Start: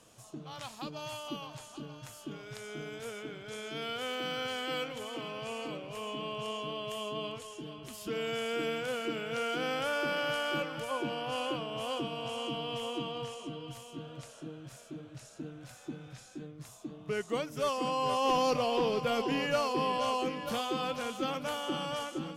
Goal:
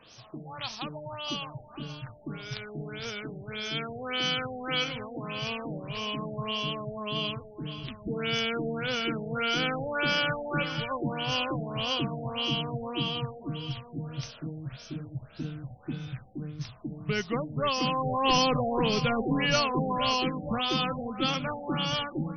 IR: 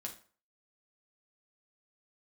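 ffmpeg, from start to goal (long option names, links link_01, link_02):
-af "crystalizer=i=5.5:c=0,asubboost=boost=4:cutoff=200,afftfilt=real='re*lt(b*sr/1024,840*pow(6400/840,0.5+0.5*sin(2*PI*1.7*pts/sr)))':imag='im*lt(b*sr/1024,840*pow(6400/840,0.5+0.5*sin(2*PI*1.7*pts/sr)))':win_size=1024:overlap=0.75,volume=2.5dB"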